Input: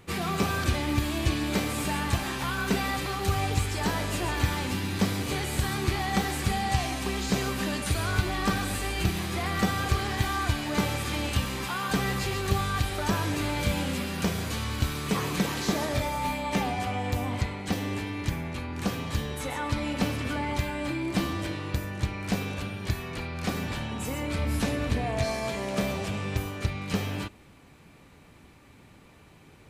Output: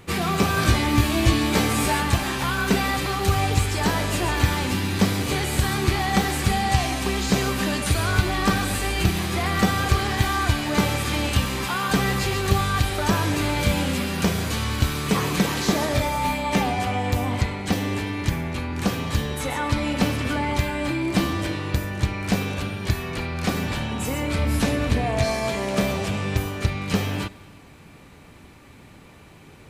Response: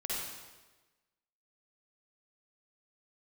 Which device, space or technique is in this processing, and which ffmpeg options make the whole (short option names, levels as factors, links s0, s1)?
compressed reverb return: -filter_complex "[0:a]asplit=2[s0][s1];[1:a]atrim=start_sample=2205[s2];[s1][s2]afir=irnorm=-1:irlink=0,acompressor=threshold=0.0316:ratio=6,volume=0.141[s3];[s0][s3]amix=inputs=2:normalize=0,asettb=1/sr,asplit=3[s4][s5][s6];[s4]atrim=end=0.554[s7];[s5]atrim=start=0.55:end=2.02,asetpts=PTS-STARTPTS,afade=t=in:d=0.004:c=qsin,afade=t=out:st=1.466:d=0.004:c=qsin,asplit=2[s8][s9];[s9]adelay=18,volume=0.794[s10];[s8][s10]amix=inputs=2:normalize=0,atrim=end_sample=64827[s11];[s6]atrim=start=2.016[s12];[s7][s11]acrossfade=d=0.004:c1=hsin:c2=qsin[s13];[s13][s12]acrossfade=d=0.004:c1=qsin:c2=hsin,volume=1.88"